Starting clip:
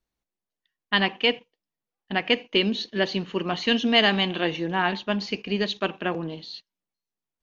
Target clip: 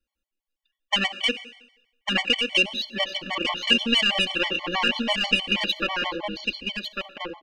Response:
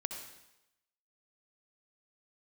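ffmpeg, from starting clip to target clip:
-filter_complex "[0:a]alimiter=limit=-13.5dB:level=0:latency=1:release=16,asubboost=boost=8:cutoff=55,aeval=exprs='0.224*(cos(1*acos(clip(val(0)/0.224,-1,1)))-cos(1*PI/2))+0.0447*(cos(3*acos(clip(val(0)/0.224,-1,1)))-cos(3*PI/2))':c=same,aecho=1:1:3.6:0.9,aecho=1:1:1149:0.531,asplit=2[a][b];[1:a]atrim=start_sample=2205,lowshelf=f=190:g=-11.5[c];[b][c]afir=irnorm=-1:irlink=0,volume=-9.5dB[d];[a][d]amix=inputs=2:normalize=0,acompressor=threshold=-21dB:ratio=6,equalizer=f=2.8k:t=o:w=0.42:g=9,afftfilt=real='re*gt(sin(2*PI*6.2*pts/sr)*(1-2*mod(floor(b*sr/1024/590),2)),0)':imag='im*gt(sin(2*PI*6.2*pts/sr)*(1-2*mod(floor(b*sr/1024/590),2)),0)':win_size=1024:overlap=0.75,volume=4dB"

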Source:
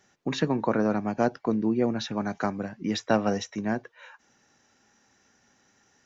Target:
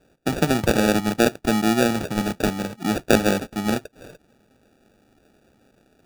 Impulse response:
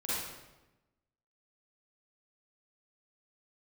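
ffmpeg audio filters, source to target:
-af "acrusher=samples=42:mix=1:aa=0.000001,volume=5.5dB"

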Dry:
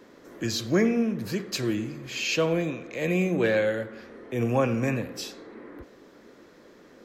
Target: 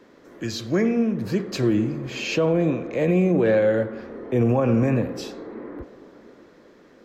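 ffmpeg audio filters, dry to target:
-filter_complex "[0:a]highshelf=f=7.3k:g=-8,acrossover=split=1200[a][b];[a]dynaudnorm=f=240:g=11:m=11.5dB[c];[c][b]amix=inputs=2:normalize=0,alimiter=limit=-11.5dB:level=0:latency=1:release=61"

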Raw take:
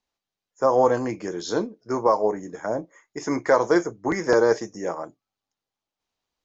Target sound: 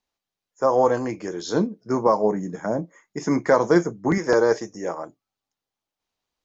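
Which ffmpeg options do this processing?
-filter_complex "[0:a]asettb=1/sr,asplit=3[a][b][c];[a]atrim=end=1.544[d];[b]atrim=start=1.54:end=4.18,asetpts=PTS-STARTPTS,afade=t=in:d=0.004:c=qsin,afade=t=out:st=2.636:d=0.004:c=qsin,equalizer=f=180:w=1.5:g=11.5[e];[c]atrim=start=4.176[f];[d][e]acrossfade=d=0.004:c1=hsin:c2=qsin[g];[g][f]acrossfade=d=0.004:c1=qsin:c2=hsin"

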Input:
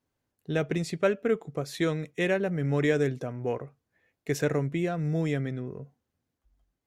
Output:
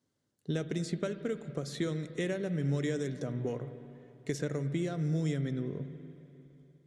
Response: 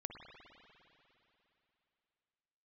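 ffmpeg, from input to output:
-filter_complex "[0:a]highpass=130,equalizer=f=570:t=q:w=4:g=3,equalizer=f=1.7k:t=q:w=4:g=-3,equalizer=f=2.5k:t=q:w=4:g=-9,lowpass=f=9.7k:w=0.5412,lowpass=f=9.7k:w=1.3066,acrossover=split=3000|7200[a][b][c];[a]acompressor=threshold=-33dB:ratio=4[d];[b]acompressor=threshold=-53dB:ratio=4[e];[c]acompressor=threshold=-56dB:ratio=4[f];[d][e][f]amix=inputs=3:normalize=0,equalizer=f=780:t=o:w=1.5:g=-8.5,asplit=2[g][h];[1:a]atrim=start_sample=2205,lowshelf=f=190:g=6.5[i];[h][i]afir=irnorm=-1:irlink=0,volume=-1dB[j];[g][j]amix=inputs=2:normalize=0"

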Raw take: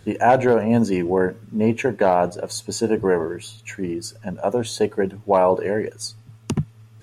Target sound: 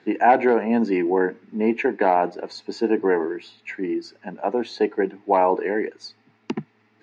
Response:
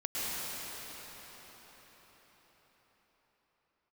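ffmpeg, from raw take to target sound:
-af "highpass=f=230:w=0.5412,highpass=f=230:w=1.3066,equalizer=f=320:t=q:w=4:g=4,equalizer=f=560:t=q:w=4:g=-8,equalizer=f=820:t=q:w=4:g=4,equalizer=f=1.2k:t=q:w=4:g=-5,equalizer=f=2k:t=q:w=4:g=6,equalizer=f=3.3k:t=q:w=4:g=-8,lowpass=f=4.2k:w=0.5412,lowpass=f=4.2k:w=1.3066"

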